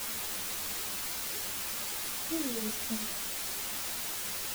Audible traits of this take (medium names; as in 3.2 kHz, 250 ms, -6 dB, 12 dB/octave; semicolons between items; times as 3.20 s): tremolo triangle 2.6 Hz, depth 90%; a quantiser's noise floor 6-bit, dither triangular; a shimmering, thickened sound